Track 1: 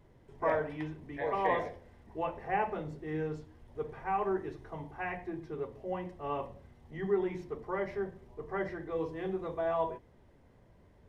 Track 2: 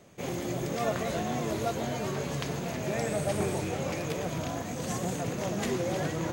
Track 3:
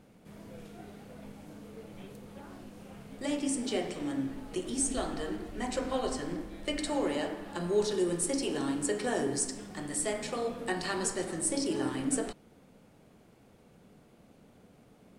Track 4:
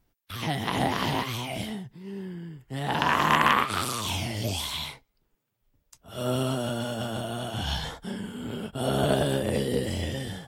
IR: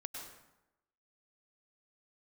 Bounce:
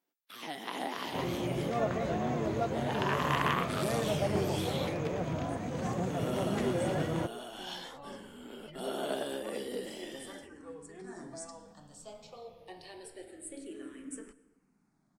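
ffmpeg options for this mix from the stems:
-filter_complex "[0:a]acompressor=threshold=-34dB:ratio=2.5,asplit=2[a][b];[b]adelay=2.4,afreqshift=-0.87[c];[a][c]amix=inputs=2:normalize=1,adelay=1750,volume=-11dB,asplit=2[d][e];[e]volume=-8.5dB[f];[1:a]lowpass=f=1.7k:p=1,adelay=950,volume=-0.5dB[g];[2:a]asplit=2[h][i];[i]afreqshift=-0.26[j];[h][j]amix=inputs=2:normalize=1,adelay=2000,volume=-13.5dB,afade=t=in:st=10.98:d=0.22:silence=0.421697,asplit=2[k][l];[l]volume=-11.5dB[m];[3:a]highpass=f=250:w=0.5412,highpass=f=250:w=1.3066,volume=-9.5dB[n];[4:a]atrim=start_sample=2205[o];[f][m]amix=inputs=2:normalize=0[p];[p][o]afir=irnorm=-1:irlink=0[q];[d][g][k][n][q]amix=inputs=5:normalize=0"

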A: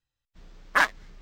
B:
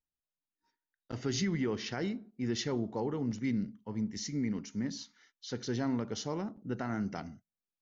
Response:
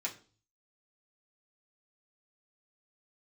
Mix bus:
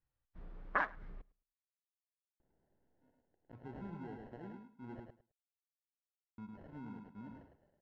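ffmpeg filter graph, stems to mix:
-filter_complex "[0:a]acompressor=threshold=-27dB:ratio=4,volume=-1dB,asplit=2[a][b];[b]volume=-23.5dB[c];[1:a]acompressor=mode=upward:threshold=-41dB:ratio=2.5,acrusher=samples=37:mix=1:aa=0.000001,adelay=2400,volume=-15.5dB,asplit=3[d][e][f];[d]atrim=end=5,asetpts=PTS-STARTPTS,afade=t=out:st=4.996:d=0.004:c=hsin[g];[e]atrim=start=5:end=6.38,asetpts=PTS-STARTPTS,volume=0[h];[f]atrim=start=6.38,asetpts=PTS-STARTPTS,afade=t=in:d=0.004:c=hsin[i];[g][h][i]concat=n=3:v=0:a=1,asplit=2[j][k];[k]volume=-4.5dB[l];[c][l]amix=inputs=2:normalize=0,aecho=0:1:106|212|318:1|0.17|0.0289[m];[a][j][m]amix=inputs=3:normalize=0,lowpass=1.4k"

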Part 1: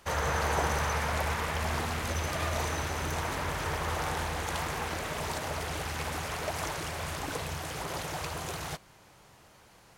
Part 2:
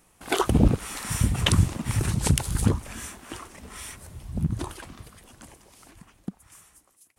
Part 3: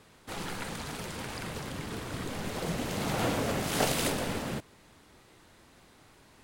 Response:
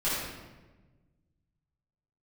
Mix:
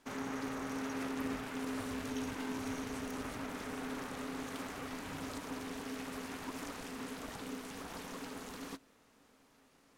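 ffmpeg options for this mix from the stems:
-filter_complex "[0:a]alimiter=level_in=0.5dB:limit=-24dB:level=0:latency=1:release=18,volume=-0.5dB,aeval=exprs='val(0)*sin(2*PI*340*n/s)':c=same,aeval=exprs='0.0596*(cos(1*acos(clip(val(0)/0.0596,-1,1)))-cos(1*PI/2))+0.00211*(cos(5*acos(clip(val(0)/0.0596,-1,1)))-cos(5*PI/2))':c=same,volume=-4.5dB[a];[1:a]acompressor=threshold=-26dB:ratio=6,flanger=delay=18.5:depth=5:speed=0.63,adelay=700,volume=-16.5dB[b];[a][b]amix=inputs=2:normalize=0,equalizer=f=270:t=o:w=0.21:g=11.5,aeval=exprs='0.0668*(cos(1*acos(clip(val(0)/0.0668,-1,1)))-cos(1*PI/2))+0.00841*(cos(3*acos(clip(val(0)/0.0668,-1,1)))-cos(3*PI/2))':c=same"

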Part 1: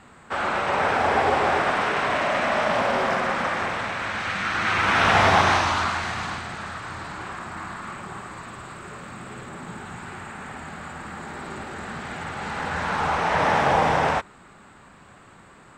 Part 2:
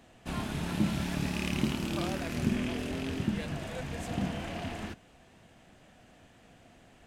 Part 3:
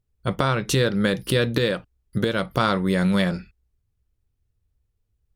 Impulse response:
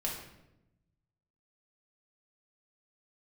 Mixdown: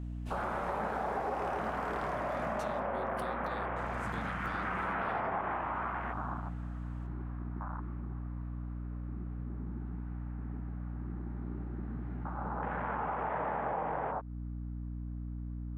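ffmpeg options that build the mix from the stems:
-filter_complex "[0:a]afwtdn=0.0447,lowpass=1.3k,equalizer=f=79:t=o:w=1.1:g=-14.5,volume=-2.5dB[a];[1:a]volume=-13.5dB,asplit=3[b][c][d];[b]atrim=end=2.8,asetpts=PTS-STARTPTS,afade=t=out:st=2.796:d=0.004:c=hsin[e];[c]atrim=start=2.8:end=3.76,asetpts=PTS-STARTPTS,volume=0[f];[d]atrim=start=3.76,asetpts=PTS-STARTPTS,afade=t=in:d=0.004:c=hsin[g];[e][f][g]concat=n=3:v=0:a=1,asplit=2[h][i];[i]volume=-4dB[j];[2:a]acompressor=threshold=-23dB:ratio=6,adelay=1900,volume=-17dB,asplit=2[k][l];[l]volume=-14dB[m];[3:a]atrim=start_sample=2205[n];[j][m]amix=inputs=2:normalize=0[o];[o][n]afir=irnorm=-1:irlink=0[p];[a][h][k][p]amix=inputs=4:normalize=0,aeval=exprs='val(0)+0.0126*(sin(2*PI*60*n/s)+sin(2*PI*2*60*n/s)/2+sin(2*PI*3*60*n/s)/3+sin(2*PI*4*60*n/s)/4+sin(2*PI*5*60*n/s)/5)':c=same,acompressor=threshold=-32dB:ratio=6"

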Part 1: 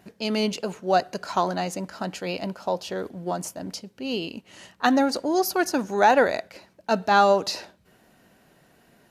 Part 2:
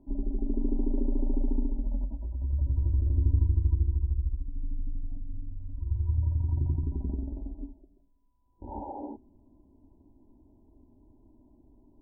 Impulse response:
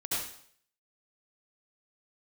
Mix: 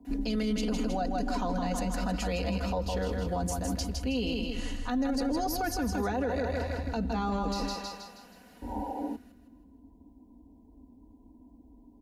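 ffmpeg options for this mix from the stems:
-filter_complex "[0:a]adelay=50,volume=-0.5dB,asplit=2[a][b];[b]volume=-7dB[c];[1:a]highpass=44,acompressor=threshold=-31dB:ratio=6,volume=2dB[d];[c]aecho=0:1:159|318|477|636|795|954:1|0.41|0.168|0.0689|0.0283|0.0116[e];[a][d][e]amix=inputs=3:normalize=0,acrossover=split=110|430[f][g][h];[f]acompressor=threshold=-36dB:ratio=4[i];[g]acompressor=threshold=-28dB:ratio=4[j];[h]acompressor=threshold=-34dB:ratio=4[k];[i][j][k]amix=inputs=3:normalize=0,aecho=1:1:4.1:0.86,alimiter=limit=-22.5dB:level=0:latency=1:release=24"

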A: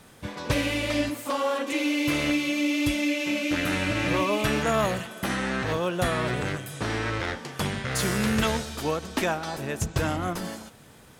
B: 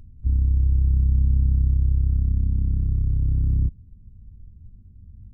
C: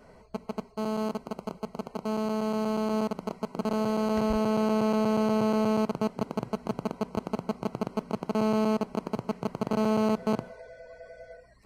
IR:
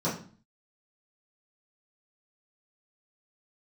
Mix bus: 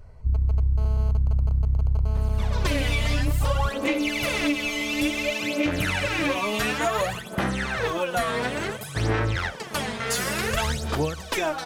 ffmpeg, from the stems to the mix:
-filter_complex "[0:a]aphaser=in_gain=1:out_gain=1:delay=4.4:decay=0.75:speed=0.57:type=sinusoidal,adelay=2150,volume=-1dB[a];[1:a]volume=-1.5dB[b];[2:a]alimiter=limit=-20.5dB:level=0:latency=1,volume=-5dB[c];[a][b][c]amix=inputs=3:normalize=0,equalizer=f=250:t=o:w=0.7:g=-7,alimiter=limit=-14dB:level=0:latency=1:release=152"

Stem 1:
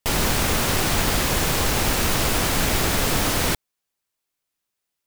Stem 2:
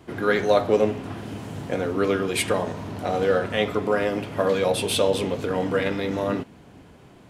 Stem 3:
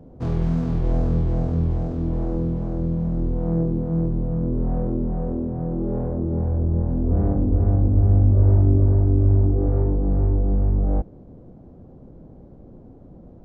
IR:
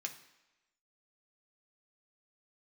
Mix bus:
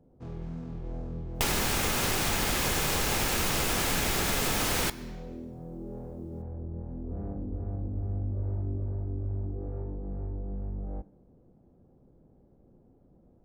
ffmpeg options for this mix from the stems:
-filter_complex "[0:a]adelay=1350,volume=0dB,asplit=2[a][b];[b]volume=-4.5dB[c];[2:a]volume=-17dB,asplit=2[d][e];[e]volume=-4.5dB[f];[3:a]atrim=start_sample=2205[g];[c][f]amix=inputs=2:normalize=0[h];[h][g]afir=irnorm=-1:irlink=0[i];[a][d][i]amix=inputs=3:normalize=0,acompressor=threshold=-25dB:ratio=6"

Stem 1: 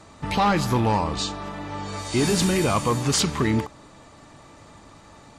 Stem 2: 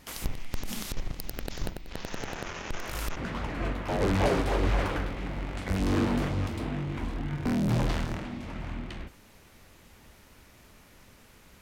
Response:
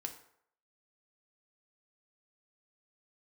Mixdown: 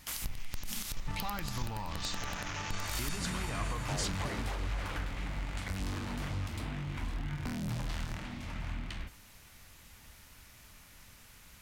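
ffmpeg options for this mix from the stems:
-filter_complex "[0:a]acompressor=threshold=-27dB:ratio=6,adelay=850,volume=-6dB[a];[1:a]highshelf=f=5k:g=4.5,alimiter=limit=-20.5dB:level=0:latency=1:release=228,acompressor=threshold=-31dB:ratio=3,volume=-2.5dB,asplit=2[b][c];[c]volume=-6.5dB[d];[2:a]atrim=start_sample=2205[e];[d][e]afir=irnorm=-1:irlink=0[f];[a][b][f]amix=inputs=3:normalize=0,equalizer=f=390:t=o:w=1.9:g=-10"

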